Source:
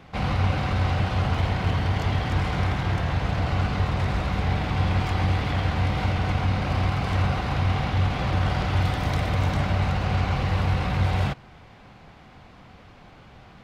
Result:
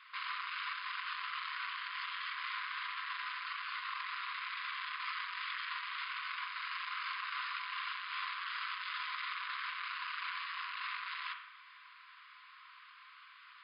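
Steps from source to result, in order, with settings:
soft clipping −26 dBFS, distortion −9 dB
linear-phase brick-wall band-pass 980–5,100 Hz
convolution reverb RT60 0.75 s, pre-delay 38 ms, DRR 5 dB
level −2.5 dB

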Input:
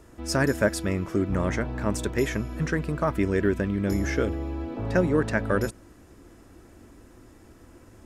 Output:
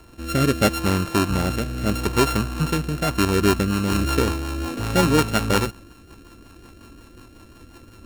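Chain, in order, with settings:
samples sorted by size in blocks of 32 samples
rotating-speaker cabinet horn 0.75 Hz, later 5.5 Hz, at 0:02.86
level +6.5 dB

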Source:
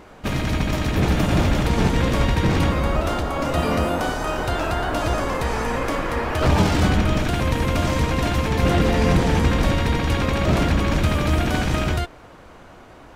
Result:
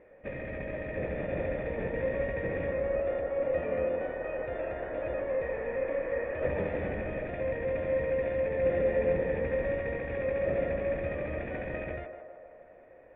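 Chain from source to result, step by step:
formant resonators in series e
feedback echo with a band-pass in the loop 155 ms, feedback 70%, band-pass 730 Hz, level −5.5 dB

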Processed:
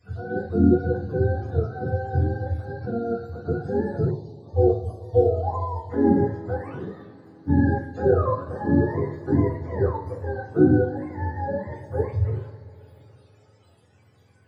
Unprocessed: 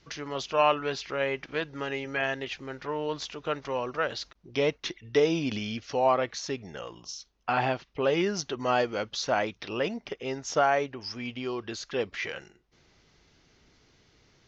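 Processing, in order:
frequency axis turned over on the octave scale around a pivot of 460 Hz
coupled-rooms reverb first 0.45 s, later 3.8 s, from −21 dB, DRR −4.5 dB
gain on a spectral selection 0:04.10–0:05.90, 1,200–2,900 Hz −27 dB

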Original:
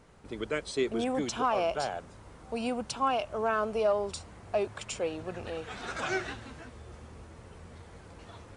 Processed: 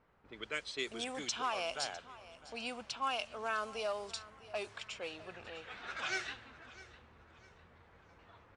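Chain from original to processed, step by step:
low-pass that shuts in the quiet parts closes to 1,200 Hz, open at −24 dBFS
tilt shelving filter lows −10 dB, about 1,300 Hz
repeating echo 654 ms, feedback 35%, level −18 dB
level −5.5 dB

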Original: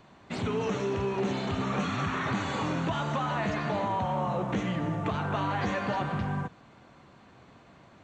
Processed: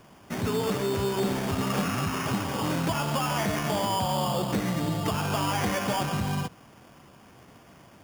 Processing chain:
0:01.99–0:02.64: parametric band 3,900 Hz −12.5 dB 1.5 octaves
sample-rate reduction 4,000 Hz, jitter 0%
level +2.5 dB

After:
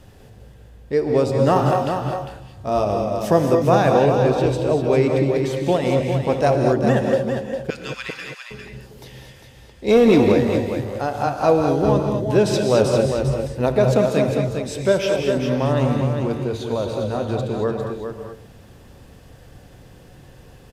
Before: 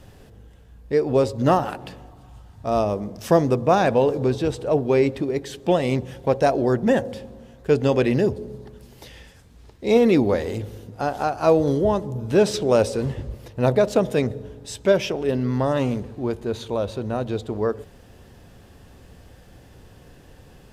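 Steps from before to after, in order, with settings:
0:01.53–0:02.85: double-tracking delay 29 ms −5 dB
0:07.70–0:08.51: inverse Chebyshev high-pass filter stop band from 380 Hz, stop band 60 dB
single-tap delay 402 ms −7 dB
reverb whose tail is shaped and stops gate 250 ms rising, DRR 3 dB
0:09.88–0:10.32: leveller curve on the samples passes 1

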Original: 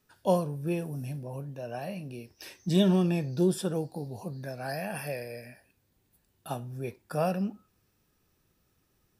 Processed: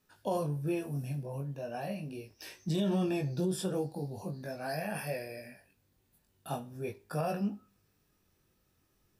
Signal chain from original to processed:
chorus effect 0.41 Hz, delay 19 ms, depth 2.5 ms
brickwall limiter −24.5 dBFS, peak gain reduction 9.5 dB
four-comb reverb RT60 0.38 s, combs from 27 ms, DRR 18.5 dB
level +1.5 dB

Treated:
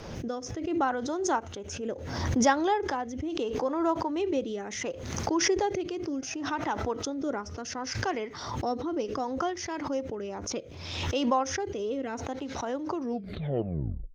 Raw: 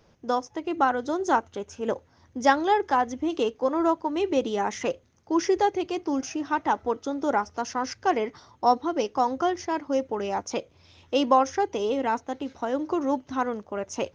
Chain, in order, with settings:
turntable brake at the end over 1.20 s
rotating-speaker cabinet horn 0.7 Hz
background raised ahead of every attack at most 43 dB per second
level −4 dB

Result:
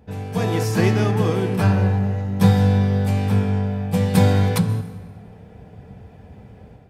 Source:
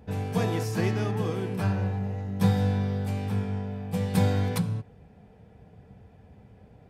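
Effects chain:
automatic gain control gain up to 9.5 dB
on a send: convolution reverb RT60 1.9 s, pre-delay 112 ms, DRR 16 dB

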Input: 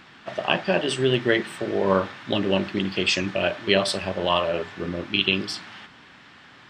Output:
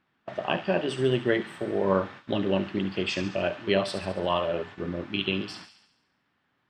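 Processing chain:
noise gate −38 dBFS, range −19 dB
high-shelf EQ 2,200 Hz −10 dB
delay with a high-pass on its return 70 ms, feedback 59%, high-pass 3,100 Hz, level −8 dB
level −2.5 dB

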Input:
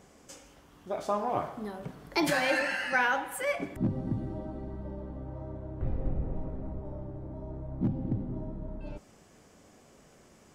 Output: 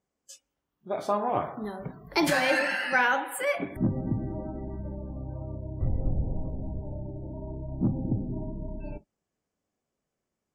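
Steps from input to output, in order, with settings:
noise reduction from a noise print of the clip's start 30 dB
0:04.78–0:07.06: graphic EQ with 15 bands 100 Hz +4 dB, 400 Hz −4 dB, 1,000 Hz −4 dB
level +3 dB

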